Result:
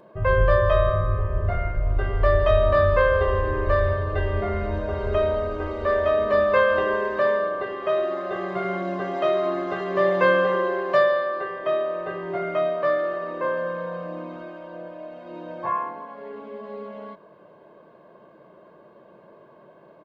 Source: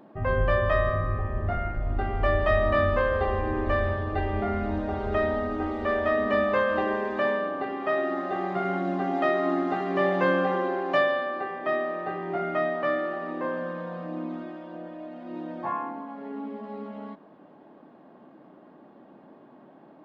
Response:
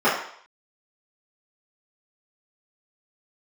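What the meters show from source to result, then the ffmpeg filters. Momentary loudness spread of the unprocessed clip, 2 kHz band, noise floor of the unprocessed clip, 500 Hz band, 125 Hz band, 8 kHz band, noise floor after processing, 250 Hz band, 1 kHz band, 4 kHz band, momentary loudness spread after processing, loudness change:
14 LU, +2.5 dB, -53 dBFS, +5.0 dB, +4.5 dB, no reading, -52 dBFS, -3.0 dB, +2.0 dB, +3.0 dB, 19 LU, +4.0 dB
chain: -af "aecho=1:1:1.9:0.8,volume=1.12"

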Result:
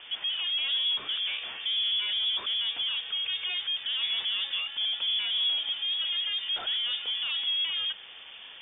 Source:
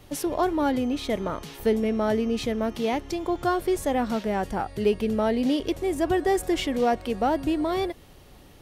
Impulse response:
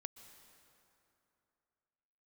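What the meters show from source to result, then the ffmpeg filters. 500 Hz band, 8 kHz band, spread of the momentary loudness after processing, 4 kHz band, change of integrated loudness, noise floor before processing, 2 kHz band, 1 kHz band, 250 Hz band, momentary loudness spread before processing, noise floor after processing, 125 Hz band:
under -30 dB, under -40 dB, 5 LU, +15.5 dB, -1.5 dB, -50 dBFS, 0.0 dB, -20.5 dB, under -35 dB, 5 LU, -46 dBFS, under -30 dB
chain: -filter_complex "[0:a]asplit=2[s0][s1];[s1]highpass=f=720:p=1,volume=17.8,asoftclip=type=tanh:threshold=0.282[s2];[s0][s2]amix=inputs=2:normalize=0,lowpass=f=1700:p=1,volume=0.501,acrossover=split=230[s3][s4];[s4]asoftclip=type=tanh:threshold=0.0562[s5];[s3][s5]amix=inputs=2:normalize=0,highshelf=f=2700:g=-9,acrusher=bits=8:dc=4:mix=0:aa=0.000001,lowpass=f=3100:t=q:w=0.5098,lowpass=f=3100:t=q:w=0.6013,lowpass=f=3100:t=q:w=0.9,lowpass=f=3100:t=q:w=2.563,afreqshift=-3600,volume=0.562"

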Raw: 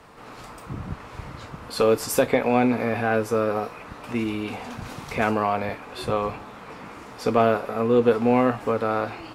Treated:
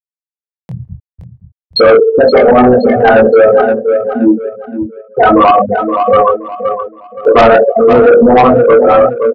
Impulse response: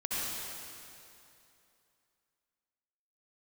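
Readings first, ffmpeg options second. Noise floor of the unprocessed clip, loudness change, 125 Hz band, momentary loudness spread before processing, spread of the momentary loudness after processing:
-42 dBFS, +15.5 dB, +8.5 dB, 19 LU, 15 LU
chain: -filter_complex "[0:a]flanger=delay=0.4:depth=3.7:regen=-11:speed=1.4:shape=triangular,asplit=2[s0][s1];[s1]aecho=0:1:40|90|152.5|230.6|328.3:0.631|0.398|0.251|0.158|0.1[s2];[s0][s2]amix=inputs=2:normalize=0,afftfilt=real='re*gte(hypot(re,im),0.224)':imag='im*gte(hypot(re,im),0.224)':win_size=1024:overlap=0.75,acompressor=mode=upward:threshold=0.00708:ratio=2.5,flanger=delay=19.5:depth=4.9:speed=0.51,highpass=f=590:p=1,asoftclip=type=tanh:threshold=0.0631,asplit=2[s3][s4];[s4]aecho=0:1:521|1042|1563:0.299|0.0836|0.0234[s5];[s3][s5]amix=inputs=2:normalize=0,apsyclip=44.7,volume=0.841"

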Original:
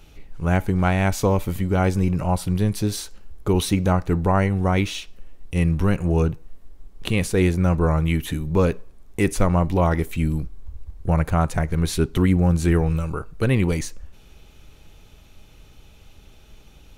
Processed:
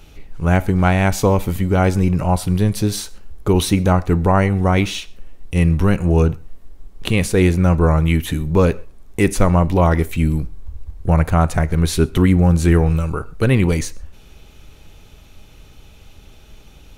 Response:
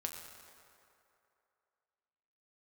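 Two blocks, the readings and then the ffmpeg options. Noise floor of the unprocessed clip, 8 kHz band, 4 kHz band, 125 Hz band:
-49 dBFS, +4.5 dB, +4.5 dB, +5.0 dB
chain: -filter_complex "[0:a]asplit=2[s0][s1];[1:a]atrim=start_sample=2205,atrim=end_sample=6174[s2];[s1][s2]afir=irnorm=-1:irlink=0,volume=0.266[s3];[s0][s3]amix=inputs=2:normalize=0,volume=1.41"

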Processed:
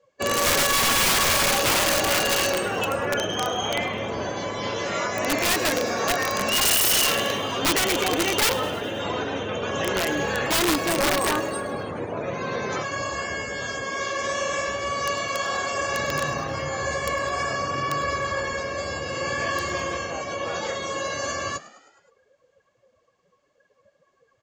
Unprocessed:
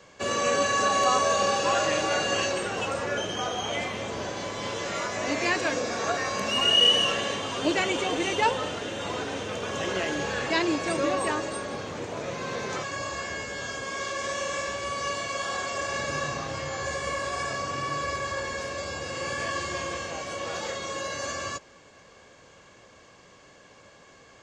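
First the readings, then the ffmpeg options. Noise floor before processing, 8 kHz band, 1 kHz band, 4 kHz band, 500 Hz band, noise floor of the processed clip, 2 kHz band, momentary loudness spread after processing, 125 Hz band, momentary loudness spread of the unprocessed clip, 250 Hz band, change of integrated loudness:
-54 dBFS, +8.0 dB, +2.5 dB, +1.5 dB, +2.5 dB, -66 dBFS, +4.5 dB, 11 LU, +4.5 dB, 10 LU, +3.0 dB, +4.0 dB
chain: -filter_complex "[0:a]afftdn=nr=25:nf=-41,aeval=exprs='(mod(9.44*val(0)+1,2)-1)/9.44':c=same,asplit=6[s0][s1][s2][s3][s4][s5];[s1]adelay=104,afreqshift=61,volume=0.119[s6];[s2]adelay=208,afreqshift=122,volume=0.0716[s7];[s3]adelay=312,afreqshift=183,volume=0.0427[s8];[s4]adelay=416,afreqshift=244,volume=0.0257[s9];[s5]adelay=520,afreqshift=305,volume=0.0155[s10];[s0][s6][s7][s8][s9][s10]amix=inputs=6:normalize=0,volume=1.68"

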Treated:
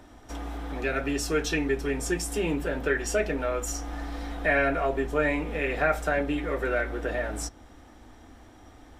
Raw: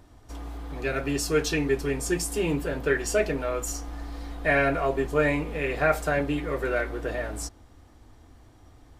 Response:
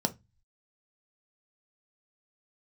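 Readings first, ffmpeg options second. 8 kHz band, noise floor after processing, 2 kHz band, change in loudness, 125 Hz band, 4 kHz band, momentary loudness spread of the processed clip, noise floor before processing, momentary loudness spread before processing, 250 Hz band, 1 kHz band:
-2.0 dB, -51 dBFS, 0.0 dB, -1.5 dB, -2.5 dB, -1.0 dB, 11 LU, -53 dBFS, 14 LU, -1.0 dB, -0.5 dB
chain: -filter_complex "[0:a]asplit=2[s0][s1];[1:a]atrim=start_sample=2205[s2];[s1][s2]afir=irnorm=-1:irlink=0,volume=0.141[s3];[s0][s3]amix=inputs=2:normalize=0,acrossover=split=150[s4][s5];[s5]acompressor=threshold=0.0112:ratio=1.5[s6];[s4][s6]amix=inputs=2:normalize=0,equalizer=f=1800:w=0.38:g=6"

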